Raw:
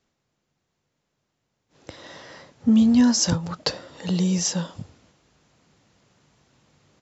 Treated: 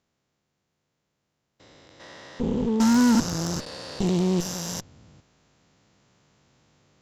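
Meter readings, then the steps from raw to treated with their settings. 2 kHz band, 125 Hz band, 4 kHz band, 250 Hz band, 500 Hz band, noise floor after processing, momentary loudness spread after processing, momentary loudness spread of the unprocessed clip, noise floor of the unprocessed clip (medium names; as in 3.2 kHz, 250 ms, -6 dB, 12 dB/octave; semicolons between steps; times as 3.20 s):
+1.0 dB, -1.5 dB, -5.0 dB, -2.0 dB, +4.0 dB, -79 dBFS, 15 LU, 13 LU, -78 dBFS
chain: spectrogram pixelated in time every 400 ms; Chebyshev shaper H 8 -15 dB, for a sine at -11.5 dBFS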